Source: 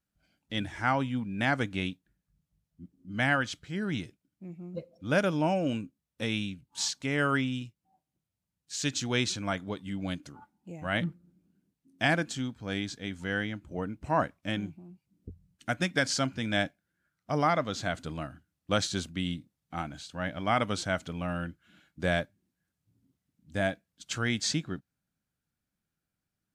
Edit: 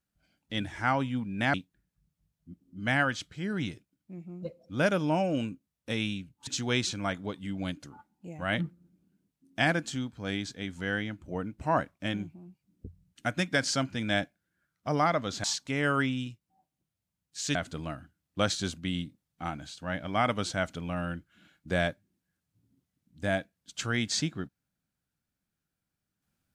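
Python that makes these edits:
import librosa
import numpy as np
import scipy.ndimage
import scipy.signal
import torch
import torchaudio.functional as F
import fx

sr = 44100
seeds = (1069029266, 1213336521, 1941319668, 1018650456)

y = fx.edit(x, sr, fx.cut(start_s=1.54, length_s=0.32),
    fx.move(start_s=6.79, length_s=2.11, to_s=17.87), tone=tone)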